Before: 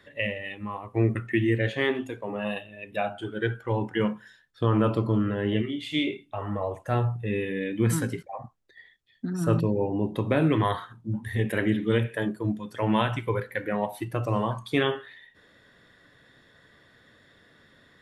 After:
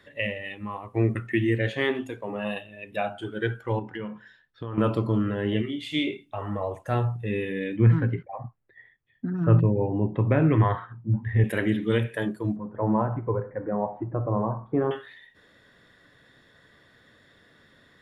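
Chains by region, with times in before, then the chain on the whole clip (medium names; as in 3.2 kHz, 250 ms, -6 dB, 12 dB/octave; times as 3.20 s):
3.79–4.78 s: low-pass 3.6 kHz + compression 3:1, threshold -33 dBFS
7.76–11.44 s: low-pass 2.4 kHz 24 dB/octave + peaking EQ 120 Hz +8.5 dB 0.56 oct
12.56–14.91 s: companding laws mixed up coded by mu + low-pass 1.1 kHz 24 dB/octave + delay 104 ms -19.5 dB
whole clip: none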